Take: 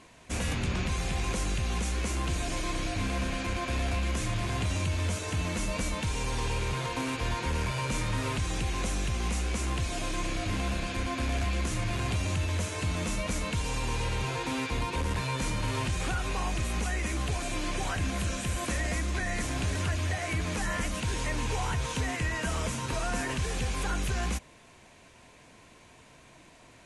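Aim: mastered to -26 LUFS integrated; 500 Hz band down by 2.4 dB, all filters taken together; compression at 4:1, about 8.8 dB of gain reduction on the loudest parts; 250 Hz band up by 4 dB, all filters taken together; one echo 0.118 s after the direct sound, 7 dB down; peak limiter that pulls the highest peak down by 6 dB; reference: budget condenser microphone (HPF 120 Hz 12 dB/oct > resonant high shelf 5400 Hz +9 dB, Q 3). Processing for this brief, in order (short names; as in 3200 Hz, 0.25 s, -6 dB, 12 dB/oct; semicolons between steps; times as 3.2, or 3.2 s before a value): bell 250 Hz +7 dB; bell 500 Hz -5.5 dB; compressor 4:1, threshold -36 dBFS; limiter -31.5 dBFS; HPF 120 Hz 12 dB/oct; resonant high shelf 5400 Hz +9 dB, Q 3; echo 0.118 s -7 dB; gain +10.5 dB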